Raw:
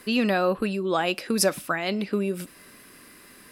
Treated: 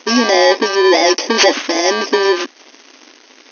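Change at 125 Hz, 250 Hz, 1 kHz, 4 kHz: n/a, +8.5 dB, +13.5 dB, +16.5 dB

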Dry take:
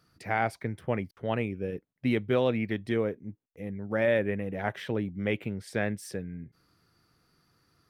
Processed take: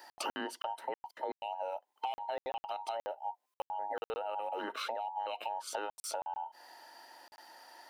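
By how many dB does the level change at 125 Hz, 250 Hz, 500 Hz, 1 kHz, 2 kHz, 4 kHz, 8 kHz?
under -35 dB, -20.0 dB, -11.0 dB, +1.5 dB, -12.0 dB, -0.5 dB, n/a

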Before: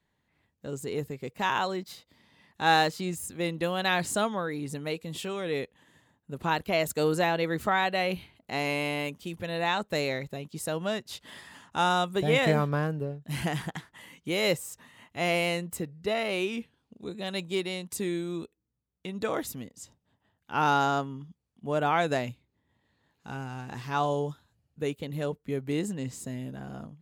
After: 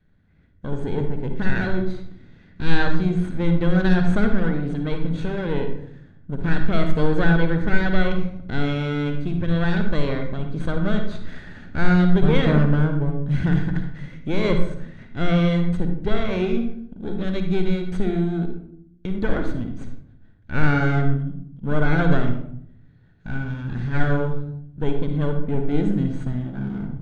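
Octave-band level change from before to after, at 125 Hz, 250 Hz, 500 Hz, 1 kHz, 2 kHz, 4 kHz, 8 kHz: +13.5 dB, +11.5 dB, +3.5 dB, -2.5 dB, +3.5 dB, -2.5 dB, under -10 dB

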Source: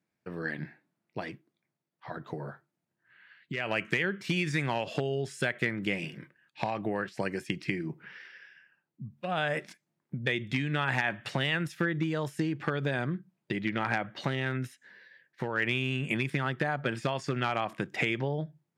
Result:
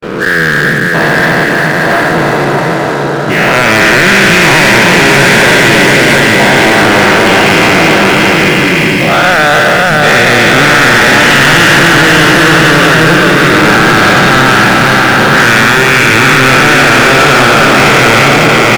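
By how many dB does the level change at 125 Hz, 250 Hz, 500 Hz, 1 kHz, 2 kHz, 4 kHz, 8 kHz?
+22.5, +25.0, +26.5, +29.5, +30.0, +30.5, +37.0 dB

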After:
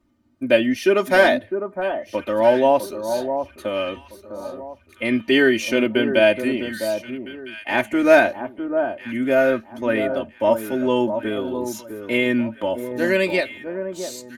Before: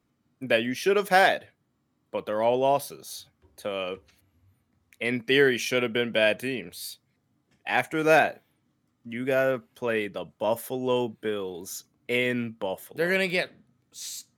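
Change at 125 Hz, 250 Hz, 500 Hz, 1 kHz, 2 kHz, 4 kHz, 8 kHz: +2.5, +10.0, +7.5, +3.5, +4.5, +3.0, +1.5 dB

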